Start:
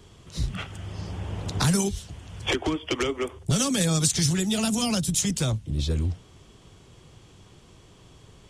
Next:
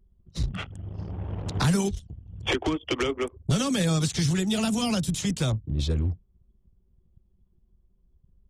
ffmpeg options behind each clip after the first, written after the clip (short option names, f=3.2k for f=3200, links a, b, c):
-filter_complex "[0:a]anlmdn=1.58,acrossover=split=4000[a][b];[b]acompressor=threshold=-34dB:ratio=4:attack=1:release=60[c];[a][c]amix=inputs=2:normalize=0"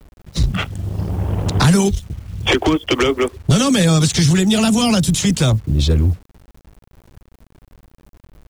-filter_complex "[0:a]asplit=2[a][b];[b]alimiter=limit=-23.5dB:level=0:latency=1,volume=-1dB[c];[a][c]amix=inputs=2:normalize=0,acrusher=bits=8:mix=0:aa=0.000001,volume=7.5dB"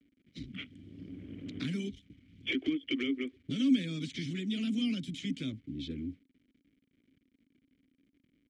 -filter_complex "[0:a]asplit=3[a][b][c];[a]bandpass=f=270:t=q:w=8,volume=0dB[d];[b]bandpass=f=2.29k:t=q:w=8,volume=-6dB[e];[c]bandpass=f=3.01k:t=q:w=8,volume=-9dB[f];[d][e][f]amix=inputs=3:normalize=0,volume=-7dB"